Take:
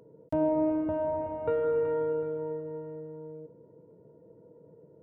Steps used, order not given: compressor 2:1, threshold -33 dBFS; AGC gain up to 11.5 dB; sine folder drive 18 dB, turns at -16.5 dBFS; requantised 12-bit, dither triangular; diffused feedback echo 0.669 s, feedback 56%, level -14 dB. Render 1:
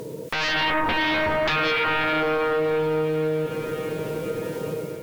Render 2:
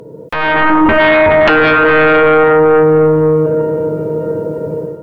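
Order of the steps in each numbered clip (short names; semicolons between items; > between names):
requantised > sine folder > diffused feedback echo > AGC > compressor; compressor > diffused feedback echo > sine folder > requantised > AGC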